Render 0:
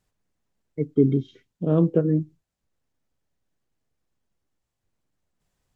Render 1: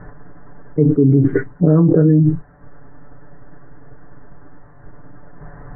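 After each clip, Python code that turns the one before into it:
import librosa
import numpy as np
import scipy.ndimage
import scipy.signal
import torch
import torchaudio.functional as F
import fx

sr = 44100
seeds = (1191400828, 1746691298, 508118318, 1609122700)

y = scipy.signal.sosfilt(scipy.signal.butter(12, 1800.0, 'lowpass', fs=sr, output='sos'), x)
y = y + 0.87 * np.pad(y, (int(6.9 * sr / 1000.0), 0))[:len(y)]
y = fx.env_flatten(y, sr, amount_pct=100)
y = y * 10.0 ** (-2.5 / 20.0)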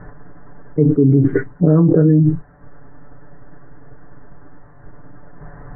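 y = x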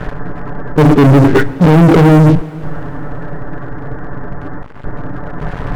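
y = fx.leveller(x, sr, passes=5)
y = fx.rev_plate(y, sr, seeds[0], rt60_s=4.5, hf_ratio=0.95, predelay_ms=0, drr_db=16.5)
y = y * 10.0 ** (-2.0 / 20.0)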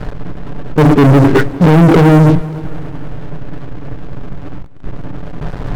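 y = fx.backlash(x, sr, play_db=-21.5)
y = fx.echo_feedback(y, sr, ms=292, feedback_pct=49, wet_db=-19)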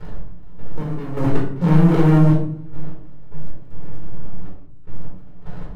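y = fx.dmg_crackle(x, sr, seeds[1], per_s=15.0, level_db=-27.0)
y = fx.step_gate(y, sr, bpm=77, pattern='x..x..x.xxx', floor_db=-12.0, edge_ms=4.5)
y = fx.room_shoebox(y, sr, seeds[2], volume_m3=720.0, walls='furnished', distance_m=4.4)
y = y * 10.0 ** (-18.0 / 20.0)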